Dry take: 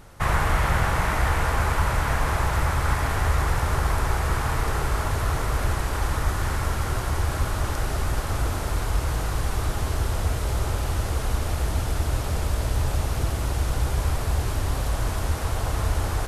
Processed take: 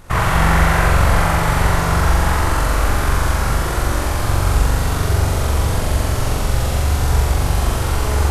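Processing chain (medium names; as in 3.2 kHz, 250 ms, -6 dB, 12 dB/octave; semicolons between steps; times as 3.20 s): granular stretch 0.51×, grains 45 ms; flutter echo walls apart 7.3 m, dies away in 1.4 s; trim +5 dB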